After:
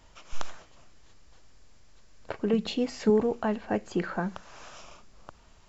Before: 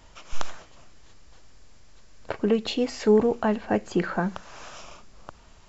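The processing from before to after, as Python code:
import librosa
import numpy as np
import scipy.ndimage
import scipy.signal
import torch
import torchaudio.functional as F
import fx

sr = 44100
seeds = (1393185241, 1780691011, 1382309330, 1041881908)

y = fx.peak_eq(x, sr, hz=180.0, db=14.0, octaves=0.41, at=(2.53, 3.1))
y = y * librosa.db_to_amplitude(-4.5)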